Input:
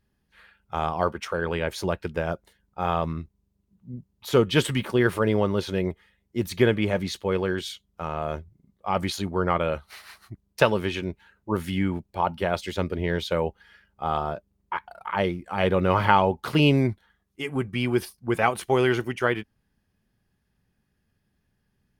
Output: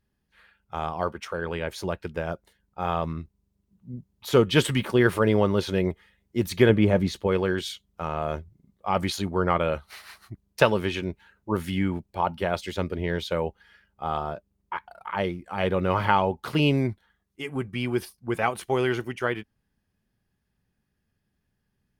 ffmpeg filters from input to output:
ffmpeg -i in.wav -filter_complex "[0:a]asettb=1/sr,asplit=3[link_01][link_02][link_03];[link_01]atrim=end=6.694[link_04];[link_02]atrim=start=6.69:end=7.27,asetpts=PTS-STARTPTS,afade=type=in:duration=0.004:curve=qsin,afade=type=out:start_time=0.576:duration=0.004:curve=qsin,tiltshelf=frequency=930:gain=4.5[link_05];[link_03]atrim=start=7.266[link_06];[link_04][link_05]acrossfade=duration=0.004:curve1=hsin:curve2=qsin[link_07];[link_07][link_06]acrossfade=duration=0.004:curve1=qsin:curve2=hsin,dynaudnorm=framelen=360:gausssize=21:maxgain=11.5dB,volume=-3.5dB" out.wav

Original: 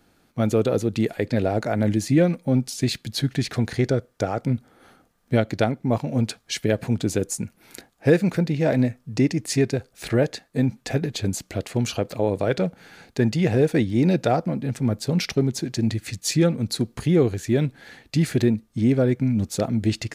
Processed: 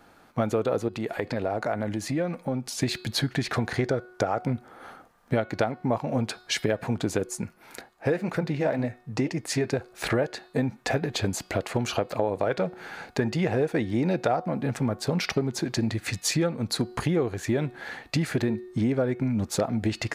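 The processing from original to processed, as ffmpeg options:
ffmpeg -i in.wav -filter_complex "[0:a]asettb=1/sr,asplit=3[link_01][link_02][link_03];[link_01]atrim=end=0.884[link_04];[link_02]atrim=start=0.88:end=2.77,asetpts=PTS-STARTPTS,afade=type=in:duration=0.004:curve=qsin,afade=type=out:start_time=1.886:duration=0.004:curve=qsin,acompressor=threshold=-34dB:ratio=2:attack=3.2:release=140:knee=1:detection=peak[link_05];[link_03]atrim=start=2.766[link_06];[link_04][link_05]acrossfade=duration=0.004:curve1=hsin:curve2=qsin[link_07];[link_07][link_06]acrossfade=duration=0.004:curve1=qsin:curve2=hsin,asettb=1/sr,asplit=3[link_08][link_09][link_10];[link_08]atrim=end=7.294[link_11];[link_09]atrim=start=7.29:end=9.66,asetpts=PTS-STARTPTS,afade=type=in:duration=0.004:curve=qsin,afade=type=out:start_time=2.366:duration=0.004:curve=qsin,flanger=delay=1.4:depth=8:regen=-69:speed=1.9:shape=sinusoidal[link_12];[link_10]atrim=start=9.656[link_13];[link_11][link_12]acrossfade=duration=0.004:curve1=hsin:curve2=qsin[link_14];[link_14][link_13]acrossfade=duration=0.004:curve1=qsin:curve2=hsin,equalizer=frequency=1000:width=0.59:gain=11.5,bandreject=frequency=366:width_type=h:width=4,bandreject=frequency=732:width_type=h:width=4,bandreject=frequency=1098:width_type=h:width=4,bandreject=frequency=1464:width_type=h:width=4,bandreject=frequency=1830:width_type=h:width=4,bandreject=frequency=2196:width_type=h:width=4,bandreject=frequency=2562:width_type=h:width=4,bandreject=frequency=2928:width_type=h:width=4,bandreject=frequency=3294:width_type=h:width=4,bandreject=frequency=3660:width_type=h:width=4,bandreject=frequency=4026:width_type=h:width=4,bandreject=frequency=4392:width_type=h:width=4,bandreject=frequency=4758:width_type=h:width=4,bandreject=frequency=5124:width_type=h:width=4,acompressor=threshold=-23dB:ratio=4" out.wav

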